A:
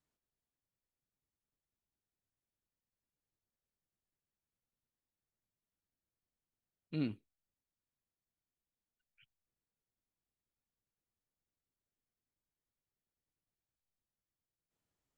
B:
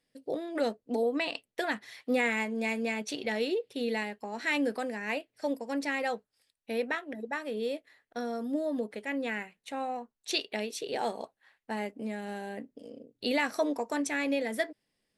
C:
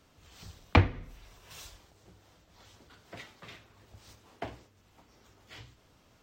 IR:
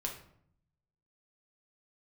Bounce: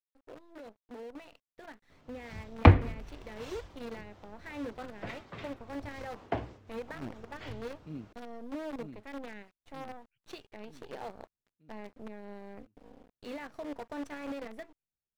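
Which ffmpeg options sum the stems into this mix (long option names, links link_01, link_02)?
-filter_complex "[0:a]lowshelf=frequency=290:gain=4.5,acrusher=bits=6:mode=log:mix=0:aa=0.000001,volume=-9dB,asplit=2[link_01][link_02];[link_02]volume=-8dB[link_03];[1:a]bandreject=frequency=60:width_type=h:width=6,bandreject=frequency=120:width_type=h:width=6,bandreject=frequency=180:width_type=h:width=6,volume=-13dB,asplit=2[link_04][link_05];[2:a]adelay=1900,volume=-0.5dB[link_06];[link_05]apad=whole_len=669377[link_07];[link_01][link_07]sidechaincompress=threshold=-54dB:ratio=8:attack=25:release=120[link_08];[link_08][link_04]amix=inputs=2:normalize=0,acrusher=bits=8:dc=4:mix=0:aa=0.000001,alimiter=level_in=14.5dB:limit=-24dB:level=0:latency=1:release=177,volume=-14.5dB,volume=0dB[link_09];[link_03]aecho=0:1:934|1868|2802|3736|4670|5604|6538|7472:1|0.55|0.303|0.166|0.0915|0.0503|0.0277|0.0152[link_10];[link_06][link_09][link_10]amix=inputs=3:normalize=0,lowpass=frequency=1400:poles=1,dynaudnorm=framelen=620:gausssize=7:maxgain=8dB"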